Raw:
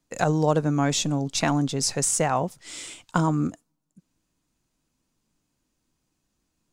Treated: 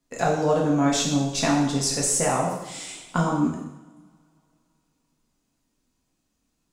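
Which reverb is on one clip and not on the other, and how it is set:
coupled-rooms reverb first 0.83 s, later 3 s, from −27 dB, DRR −3 dB
level −3.5 dB

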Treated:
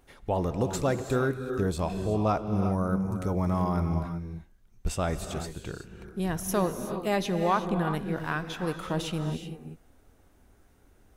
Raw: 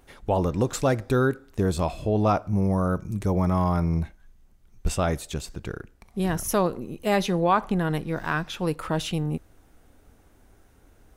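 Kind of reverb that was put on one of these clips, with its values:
reverb whose tail is shaped and stops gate 400 ms rising, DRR 7.5 dB
level −4.5 dB

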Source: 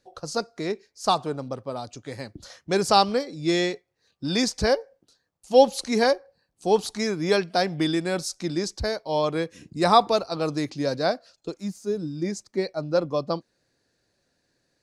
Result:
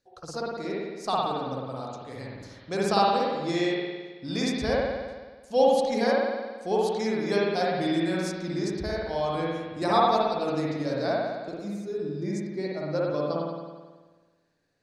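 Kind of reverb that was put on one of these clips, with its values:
spring reverb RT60 1.4 s, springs 54 ms, chirp 40 ms, DRR −5 dB
level −8.5 dB

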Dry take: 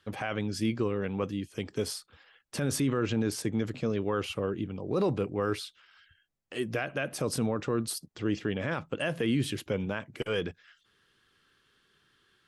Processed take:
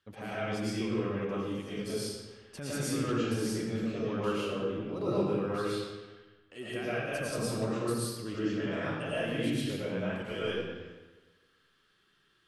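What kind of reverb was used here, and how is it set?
comb and all-pass reverb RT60 1.3 s, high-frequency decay 0.8×, pre-delay 70 ms, DRR −9.5 dB
level −11 dB

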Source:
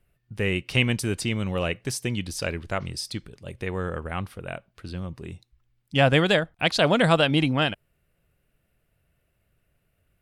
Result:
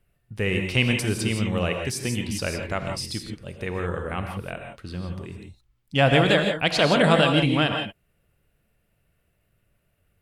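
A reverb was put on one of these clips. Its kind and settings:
reverb whose tail is shaped and stops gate 190 ms rising, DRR 3.5 dB

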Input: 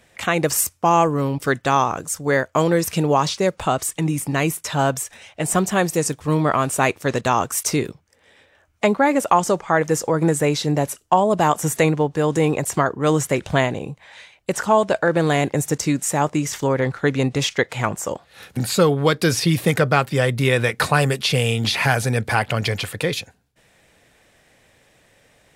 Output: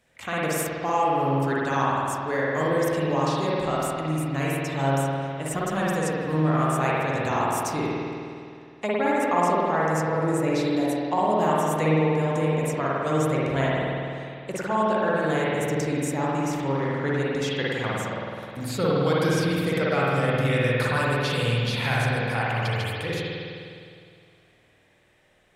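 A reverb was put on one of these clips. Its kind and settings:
spring reverb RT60 2.4 s, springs 51 ms, chirp 30 ms, DRR −6.5 dB
level −12 dB

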